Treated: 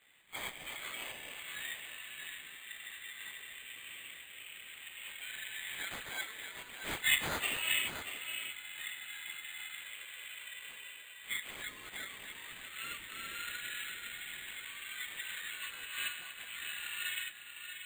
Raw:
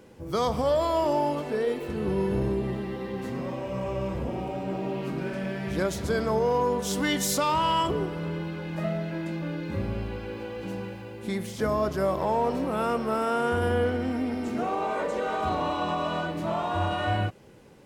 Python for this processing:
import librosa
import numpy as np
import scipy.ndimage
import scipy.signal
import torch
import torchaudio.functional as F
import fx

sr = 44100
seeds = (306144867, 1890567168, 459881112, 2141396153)

p1 = scipy.signal.sosfilt(scipy.signal.ellip(4, 1.0, 60, 1900.0, 'highpass', fs=sr, output='sos'), x)
p2 = fx.high_shelf(p1, sr, hz=9000.0, db=-12.0)
p3 = fx.chorus_voices(p2, sr, voices=6, hz=1.3, base_ms=17, depth_ms=3.0, mix_pct=65)
p4 = fx.air_absorb(p3, sr, metres=150.0)
p5 = p4 + fx.echo_single(p4, sr, ms=635, db=-8.0, dry=0)
p6 = np.repeat(p5[::8], 8)[:len(p5)]
y = p6 * 10.0 ** (8.0 / 20.0)